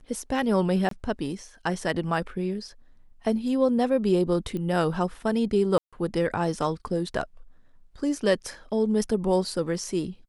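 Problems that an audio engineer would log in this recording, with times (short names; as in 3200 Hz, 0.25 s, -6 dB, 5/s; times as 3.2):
0.89–0.91 gap 23 ms
4.57 pop -22 dBFS
5.78–5.93 gap 0.146 s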